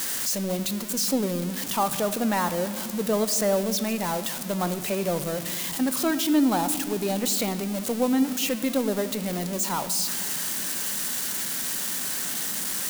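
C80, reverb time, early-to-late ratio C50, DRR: 14.5 dB, 2.2 s, 13.5 dB, 11.5 dB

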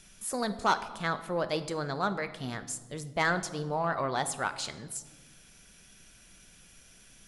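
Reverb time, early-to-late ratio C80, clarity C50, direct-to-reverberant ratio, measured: 1.4 s, 15.5 dB, 13.5 dB, 10.0 dB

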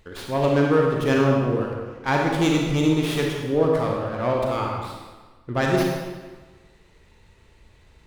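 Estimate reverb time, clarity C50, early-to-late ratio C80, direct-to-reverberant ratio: 1.3 s, 0.5 dB, 3.0 dB, -1.0 dB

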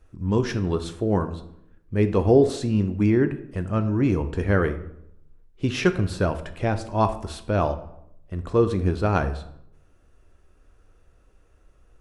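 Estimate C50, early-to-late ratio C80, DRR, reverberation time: 13.0 dB, 15.5 dB, 9.0 dB, 0.75 s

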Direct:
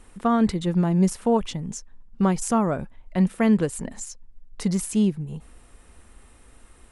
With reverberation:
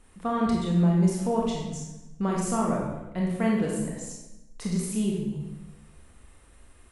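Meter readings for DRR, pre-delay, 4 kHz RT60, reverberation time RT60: -2.5 dB, 23 ms, 0.80 s, 1.0 s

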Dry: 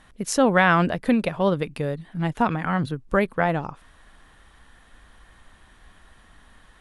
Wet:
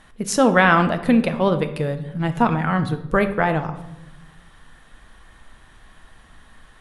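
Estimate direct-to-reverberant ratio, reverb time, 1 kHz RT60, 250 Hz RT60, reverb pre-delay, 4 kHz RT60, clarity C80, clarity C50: 8.0 dB, 0.90 s, 0.85 s, 1.4 s, 5 ms, 0.55 s, 14.5 dB, 12.0 dB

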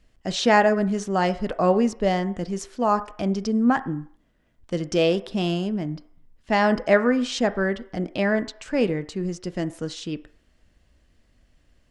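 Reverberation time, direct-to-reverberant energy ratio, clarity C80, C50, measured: 0.60 s, 11.0 dB, 19.0 dB, 16.0 dB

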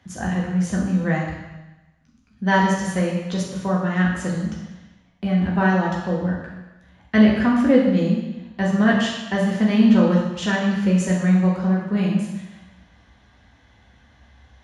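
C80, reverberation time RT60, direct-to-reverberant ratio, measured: 4.5 dB, 1.0 s, -3.5 dB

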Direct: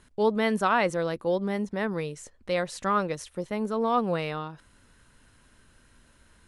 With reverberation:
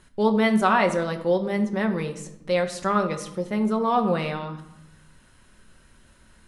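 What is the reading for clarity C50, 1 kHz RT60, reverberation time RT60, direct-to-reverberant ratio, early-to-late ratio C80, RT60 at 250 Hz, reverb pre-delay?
11.5 dB, 0.85 s, 0.85 s, 5.0 dB, 13.5 dB, 1.3 s, 5 ms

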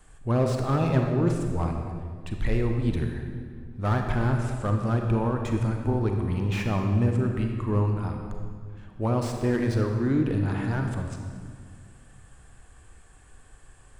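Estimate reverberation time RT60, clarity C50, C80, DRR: 2.0 s, 4.0 dB, 5.0 dB, 3.0 dB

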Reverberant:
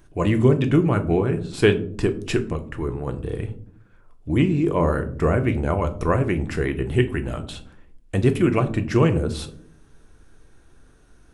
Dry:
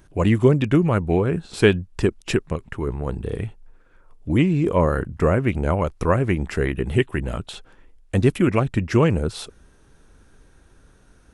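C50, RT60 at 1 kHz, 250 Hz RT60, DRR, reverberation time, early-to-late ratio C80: 15.5 dB, 0.50 s, 0.90 s, 7.0 dB, 0.60 s, 18.5 dB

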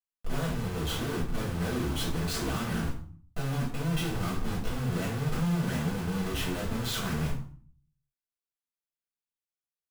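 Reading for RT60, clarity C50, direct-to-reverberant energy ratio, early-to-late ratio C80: 0.45 s, 6.5 dB, -6.5 dB, 11.0 dB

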